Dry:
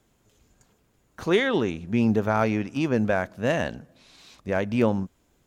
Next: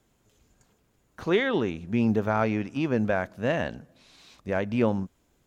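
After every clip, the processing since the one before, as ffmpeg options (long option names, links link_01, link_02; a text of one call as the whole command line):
ffmpeg -i in.wav -filter_complex "[0:a]acrossover=split=4500[link_01][link_02];[link_02]acompressor=threshold=-54dB:ratio=4:attack=1:release=60[link_03];[link_01][link_03]amix=inputs=2:normalize=0,volume=-2dB" out.wav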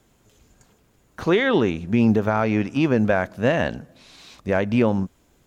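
ffmpeg -i in.wav -af "alimiter=limit=-16.5dB:level=0:latency=1:release=166,volume=7.5dB" out.wav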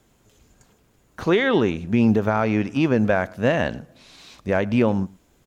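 ffmpeg -i in.wav -af "aecho=1:1:107:0.0631" out.wav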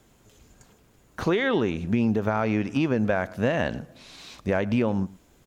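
ffmpeg -i in.wav -af "acompressor=threshold=-23dB:ratio=3,volume=1.5dB" out.wav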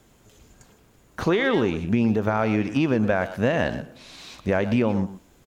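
ffmpeg -i in.wav -filter_complex "[0:a]asplit=2[link_01][link_02];[link_02]adelay=120,highpass=300,lowpass=3400,asoftclip=type=hard:threshold=-21dB,volume=-10dB[link_03];[link_01][link_03]amix=inputs=2:normalize=0,volume=2dB" out.wav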